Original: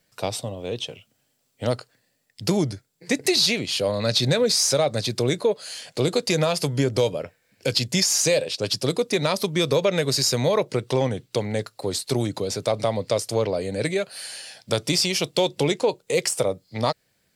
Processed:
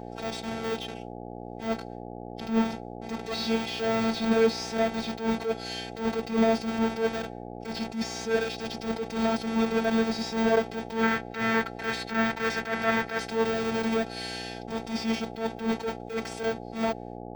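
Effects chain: half-waves squared off; expander -41 dBFS; LPF 5200 Hz 12 dB/oct; de-esser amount 75%; 11.03–13.3 bell 1700 Hz +13 dB 1.1 oct; harmonic-percussive split harmonic +9 dB; bell 300 Hz -14.5 dB 0.95 oct; upward compressor, threshold -31 dBFS; robotiser 225 Hz; buzz 60 Hz, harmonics 14, -35 dBFS 0 dB/oct; notch comb 580 Hz; attack slew limiter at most 140 dB/s; gain -3.5 dB

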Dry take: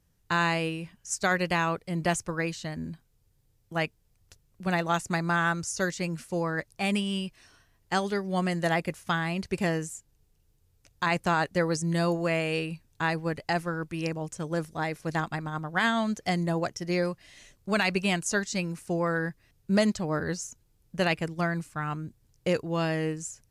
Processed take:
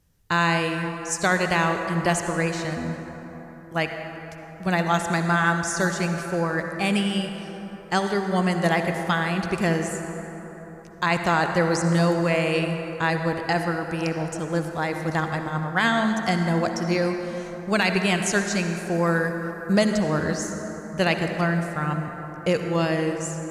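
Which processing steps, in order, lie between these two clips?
18.94–19.73 high shelf 4600 Hz +10 dB; reverb RT60 4.2 s, pre-delay 52 ms, DRR 5 dB; gain +4 dB

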